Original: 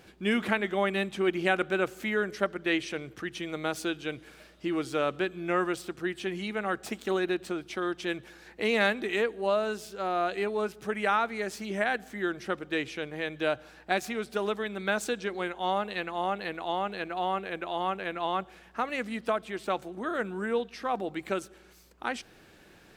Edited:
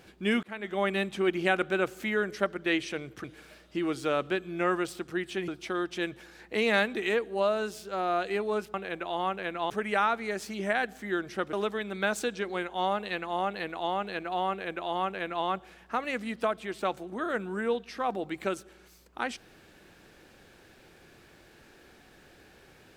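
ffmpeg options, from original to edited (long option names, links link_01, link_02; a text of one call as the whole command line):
ffmpeg -i in.wav -filter_complex "[0:a]asplit=7[link_01][link_02][link_03][link_04][link_05][link_06][link_07];[link_01]atrim=end=0.43,asetpts=PTS-STARTPTS,afade=type=out:start_time=0.426:duration=0.004:curve=hsin[link_08];[link_02]atrim=start=0.43:end=3.242,asetpts=PTS-STARTPTS,afade=type=in:duration=0.44[link_09];[link_03]atrim=start=4.128:end=6.372[link_10];[link_04]atrim=start=7.548:end=10.812[link_11];[link_05]atrim=start=17.348:end=18.312[link_12];[link_06]atrim=start=10.808:end=12.642[link_13];[link_07]atrim=start=14.378[link_14];[link_08][link_09]concat=n=2:v=0:a=1[link_15];[link_15][link_10]acrossfade=duration=0.004:curve1=hsin:curve2=hsin[link_16];[link_16][link_11]acrossfade=duration=0.004:curve1=hsin:curve2=hsin[link_17];[link_17][link_12]acrossfade=duration=0.004:curve1=hsin:curve2=hsin[link_18];[link_18][link_13]acrossfade=duration=0.004:curve1=hsin:curve2=hsin[link_19];[link_19][link_14]acrossfade=duration=0.004:curve1=hsin:curve2=hsin" out.wav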